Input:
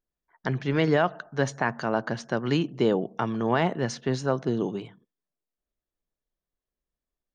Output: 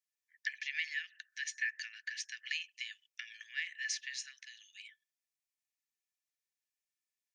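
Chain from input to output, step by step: dynamic bell 2.2 kHz, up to +6 dB, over -41 dBFS, Q 0.83; compression 4:1, threshold -28 dBFS, peak gain reduction 11 dB; rippled Chebyshev high-pass 1.7 kHz, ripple 6 dB; trim +4 dB

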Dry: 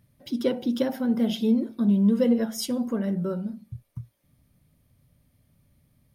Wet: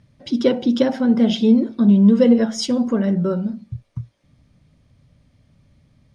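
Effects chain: low-pass 7 kHz 24 dB/octave; trim +8 dB

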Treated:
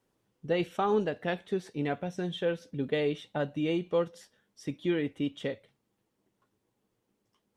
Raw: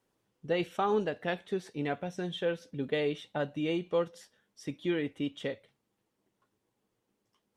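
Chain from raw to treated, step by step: bass shelf 400 Hz +3.5 dB

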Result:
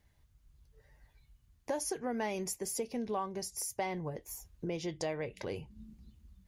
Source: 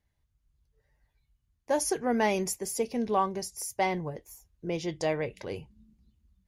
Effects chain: compression 3:1, threshold -47 dBFS, peak gain reduction 18.5 dB; trim +8 dB

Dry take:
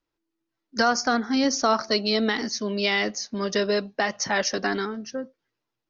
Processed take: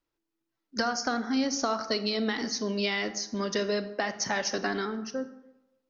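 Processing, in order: compression, threshold -23 dBFS, peak gain reduction 7 dB; on a send: reverberation RT60 0.95 s, pre-delay 28 ms, DRR 11.5 dB; on the sum: trim -2 dB

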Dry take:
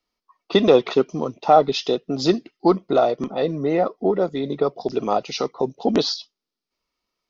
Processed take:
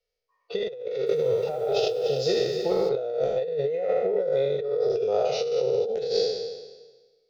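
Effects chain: spectral sustain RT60 1.33 s; FFT filter 130 Hz 0 dB, 300 Hz -22 dB, 470 Hz +11 dB, 1.1 kHz -19 dB, 1.5 kHz -2 dB; harmonic-percussive split percussive -10 dB; compressor with a negative ratio -19 dBFS, ratio -1; 0.77–2.89 s: bit-crushed delay 294 ms, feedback 55%, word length 7-bit, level -10.5 dB; trim -7 dB

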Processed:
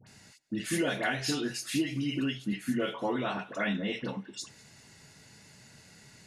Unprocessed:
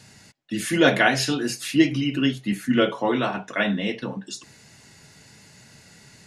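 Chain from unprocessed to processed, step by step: compression 4:1, threshold -22 dBFS, peak gain reduction 9.5 dB; phase dispersion highs, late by 70 ms, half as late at 1.4 kHz; on a send: thinning echo 198 ms, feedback 55%, high-pass 1.2 kHz, level -22.5 dB; on the sum: trim -5 dB

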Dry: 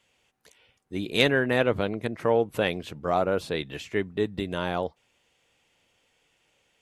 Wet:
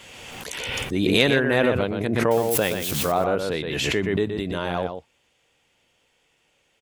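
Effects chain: 2.31–3.12 s: zero-crossing glitches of -25.5 dBFS; echo from a far wall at 21 m, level -7 dB; swell ahead of each attack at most 25 dB/s; trim +1.5 dB

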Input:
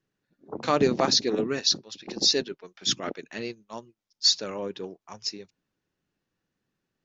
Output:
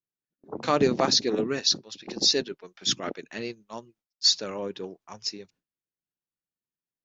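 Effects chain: gate with hold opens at -52 dBFS

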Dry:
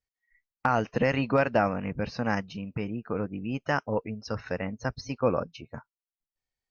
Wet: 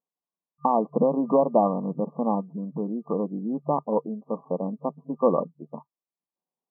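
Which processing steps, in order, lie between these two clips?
FFT band-pass 140–1200 Hz; trim +4.5 dB

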